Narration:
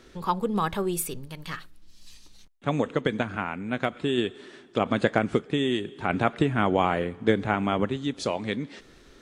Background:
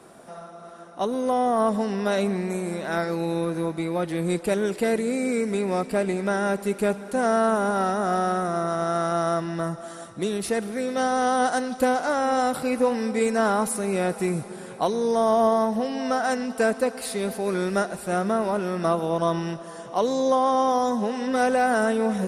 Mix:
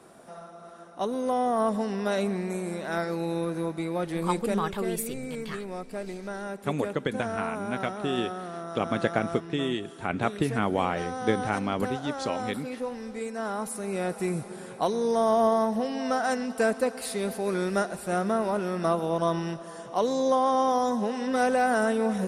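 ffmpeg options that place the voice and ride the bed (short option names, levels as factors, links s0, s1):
-filter_complex "[0:a]adelay=4000,volume=0.668[s0];[1:a]volume=1.88,afade=t=out:st=4.39:d=0.27:silence=0.398107,afade=t=in:st=13.36:d=1.16:silence=0.354813[s1];[s0][s1]amix=inputs=2:normalize=0"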